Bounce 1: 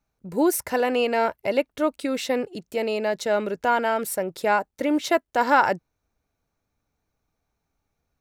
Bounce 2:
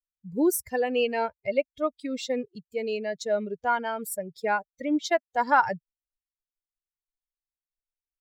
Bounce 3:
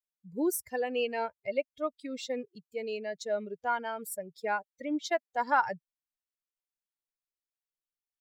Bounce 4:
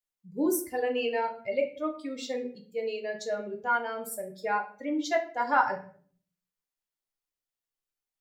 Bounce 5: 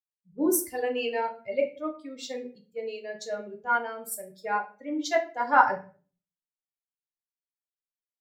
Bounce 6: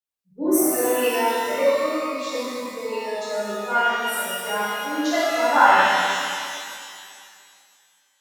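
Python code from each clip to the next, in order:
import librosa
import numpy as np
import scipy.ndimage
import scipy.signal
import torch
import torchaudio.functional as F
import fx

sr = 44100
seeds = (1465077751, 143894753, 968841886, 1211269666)

y1 = fx.bin_expand(x, sr, power=2.0)
y2 = fx.low_shelf(y1, sr, hz=130.0, db=-10.5)
y2 = F.gain(torch.from_numpy(y2), -5.0).numpy()
y3 = fx.room_shoebox(y2, sr, seeds[0], volume_m3=47.0, walls='mixed', distance_m=0.51)
y4 = fx.band_widen(y3, sr, depth_pct=70)
y5 = fx.rev_shimmer(y4, sr, seeds[1], rt60_s=2.3, semitones=12, shimmer_db=-8, drr_db=-10.5)
y5 = F.gain(torch.from_numpy(y5), -3.5).numpy()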